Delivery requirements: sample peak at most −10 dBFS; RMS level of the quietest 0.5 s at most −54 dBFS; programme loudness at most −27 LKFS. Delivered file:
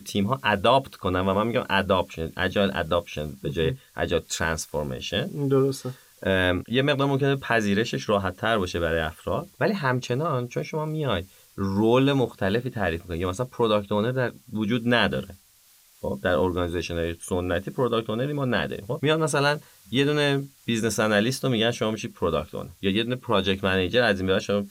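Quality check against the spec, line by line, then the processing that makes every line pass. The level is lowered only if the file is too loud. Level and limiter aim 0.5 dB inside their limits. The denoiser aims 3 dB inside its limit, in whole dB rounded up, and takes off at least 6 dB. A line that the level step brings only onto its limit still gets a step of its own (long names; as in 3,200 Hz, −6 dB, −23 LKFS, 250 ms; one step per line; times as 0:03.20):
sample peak −6.5 dBFS: out of spec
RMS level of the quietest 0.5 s −57 dBFS: in spec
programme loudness −25.0 LKFS: out of spec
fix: level −2.5 dB
brickwall limiter −10.5 dBFS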